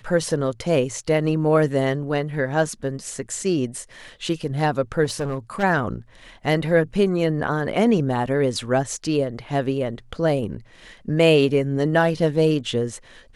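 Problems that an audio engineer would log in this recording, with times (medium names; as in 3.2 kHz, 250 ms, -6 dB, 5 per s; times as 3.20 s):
5.04–5.64 s: clipped -21 dBFS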